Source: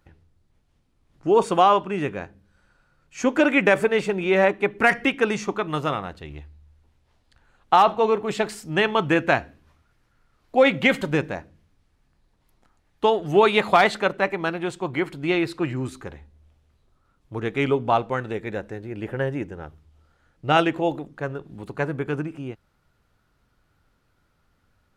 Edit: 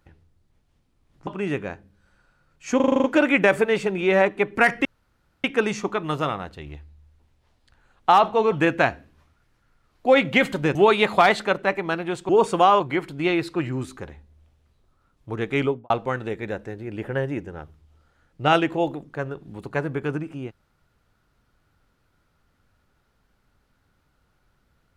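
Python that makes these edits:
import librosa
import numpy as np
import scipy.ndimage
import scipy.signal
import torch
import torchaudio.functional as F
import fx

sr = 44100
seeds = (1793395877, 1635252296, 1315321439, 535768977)

y = fx.studio_fade_out(x, sr, start_s=17.65, length_s=0.29)
y = fx.edit(y, sr, fx.move(start_s=1.27, length_s=0.51, to_s=14.84),
    fx.stutter(start_s=3.27, slice_s=0.04, count=8),
    fx.insert_room_tone(at_s=5.08, length_s=0.59),
    fx.cut(start_s=8.16, length_s=0.85),
    fx.cut(start_s=11.24, length_s=2.06), tone=tone)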